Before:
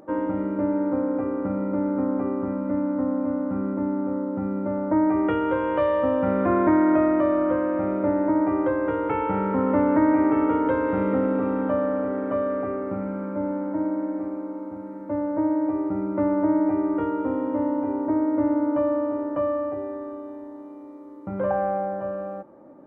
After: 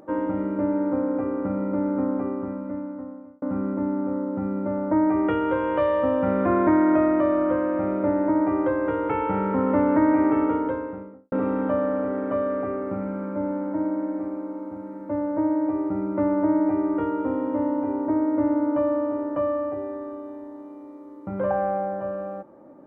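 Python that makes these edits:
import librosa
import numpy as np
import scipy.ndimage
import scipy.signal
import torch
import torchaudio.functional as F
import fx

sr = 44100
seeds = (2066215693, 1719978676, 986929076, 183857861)

y = fx.studio_fade_out(x, sr, start_s=10.28, length_s=1.04)
y = fx.edit(y, sr, fx.fade_out_span(start_s=2.04, length_s=1.38), tone=tone)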